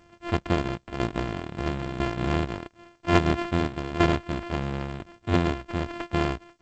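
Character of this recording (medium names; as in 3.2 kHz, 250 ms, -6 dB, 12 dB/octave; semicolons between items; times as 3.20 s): a buzz of ramps at a fixed pitch in blocks of 128 samples; tremolo saw down 1 Hz, depth 70%; aliases and images of a low sample rate 3.8 kHz, jitter 0%; G.722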